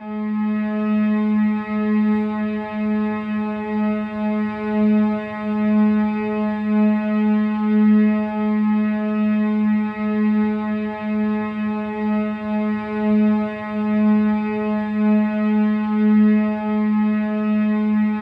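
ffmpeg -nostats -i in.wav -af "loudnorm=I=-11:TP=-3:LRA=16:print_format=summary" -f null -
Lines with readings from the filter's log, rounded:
Input Integrated:    -19.5 LUFS
Input True Peak:      -8.5 dBTP
Input LRA:             3.0 LU
Input Threshold:     -29.5 LUFS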